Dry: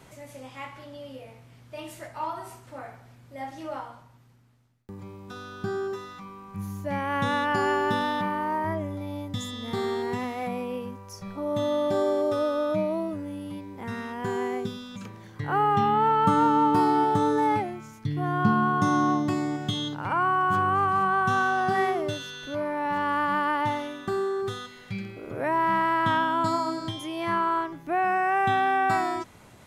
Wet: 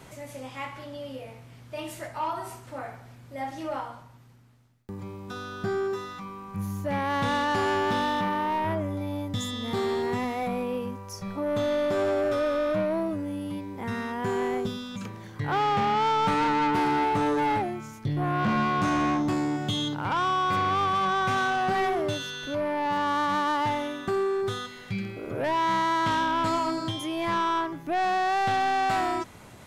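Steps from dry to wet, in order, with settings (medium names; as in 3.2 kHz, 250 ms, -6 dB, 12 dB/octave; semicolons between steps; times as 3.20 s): saturation -25 dBFS, distortion -10 dB; trim +3.5 dB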